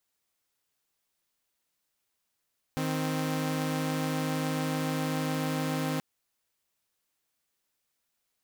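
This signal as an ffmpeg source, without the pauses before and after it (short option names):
-f lavfi -i "aevalsrc='0.0376*((2*mod(155.56*t,1)-1)+(2*mod(261.63*t,1)-1))':d=3.23:s=44100"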